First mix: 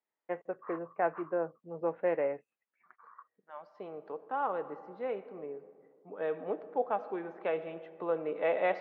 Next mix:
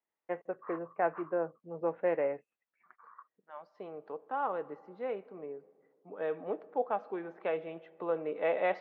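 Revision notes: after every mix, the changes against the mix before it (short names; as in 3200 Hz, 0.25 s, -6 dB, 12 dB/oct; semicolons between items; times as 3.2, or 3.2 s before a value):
second voice: send -7.5 dB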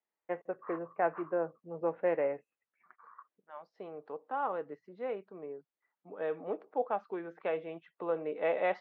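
reverb: off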